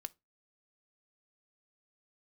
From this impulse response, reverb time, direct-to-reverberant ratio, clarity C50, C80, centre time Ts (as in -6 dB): 0.25 s, 9.5 dB, 27.0 dB, 36.5 dB, 2 ms